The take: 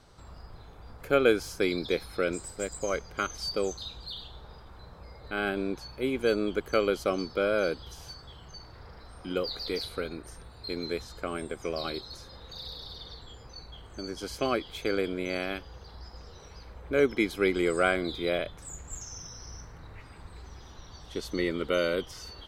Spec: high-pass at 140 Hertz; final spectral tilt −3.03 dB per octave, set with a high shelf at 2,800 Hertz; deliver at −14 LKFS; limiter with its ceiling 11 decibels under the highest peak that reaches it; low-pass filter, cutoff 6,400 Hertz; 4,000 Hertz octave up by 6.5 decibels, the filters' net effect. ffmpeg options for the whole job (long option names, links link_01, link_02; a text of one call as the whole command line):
ffmpeg -i in.wav -af "highpass=140,lowpass=6400,highshelf=frequency=2800:gain=3,equalizer=frequency=4000:width_type=o:gain=6,volume=18.5dB,alimiter=limit=-0.5dB:level=0:latency=1" out.wav